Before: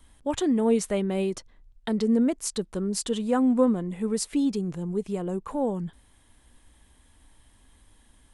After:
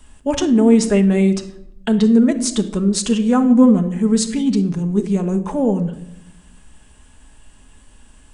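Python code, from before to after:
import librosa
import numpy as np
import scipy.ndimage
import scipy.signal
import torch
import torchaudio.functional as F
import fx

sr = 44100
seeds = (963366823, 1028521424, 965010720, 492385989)

y = fx.room_shoebox(x, sr, seeds[0], volume_m3=2400.0, walls='furnished', distance_m=1.4)
y = fx.formant_shift(y, sr, semitones=-2)
y = F.gain(torch.from_numpy(y), 8.5).numpy()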